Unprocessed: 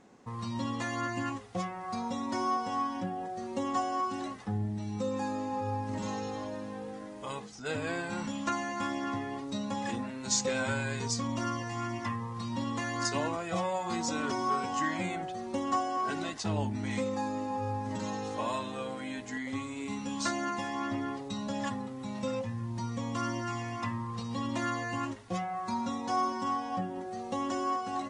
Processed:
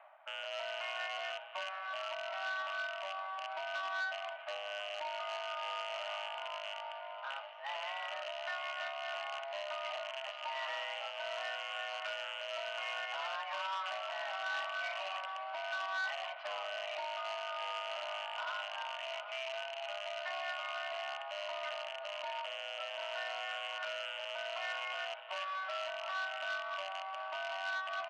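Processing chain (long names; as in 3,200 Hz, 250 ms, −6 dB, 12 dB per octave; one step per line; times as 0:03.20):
loose part that buzzes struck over −42 dBFS, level −23 dBFS
brickwall limiter −25 dBFS, peak gain reduction 9.5 dB
reversed playback
upward compression, threshold −42 dBFS
reversed playback
single-sideband voice off tune +400 Hz 190–2,700 Hz
on a send: repeating echo 727 ms, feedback 59%, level −13 dB
on the sum: saturating transformer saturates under 2,300 Hz
level −2.5 dB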